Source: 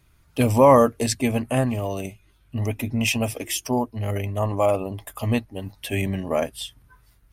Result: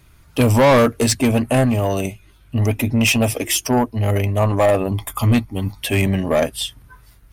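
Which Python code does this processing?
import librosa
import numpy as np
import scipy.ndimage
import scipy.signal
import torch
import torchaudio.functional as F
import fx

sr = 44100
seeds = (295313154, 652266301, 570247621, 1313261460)

y = fx.comb(x, sr, ms=0.9, depth=0.55, at=(4.88, 5.81))
y = 10.0 ** (-18.5 / 20.0) * np.tanh(y / 10.0 ** (-18.5 / 20.0))
y = y * librosa.db_to_amplitude(9.0)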